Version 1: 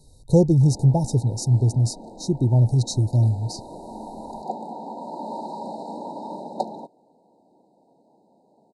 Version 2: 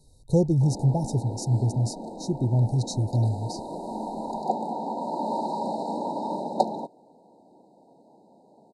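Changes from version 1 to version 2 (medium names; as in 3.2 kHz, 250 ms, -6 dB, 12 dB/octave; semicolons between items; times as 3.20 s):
speech -5.0 dB; background +4.0 dB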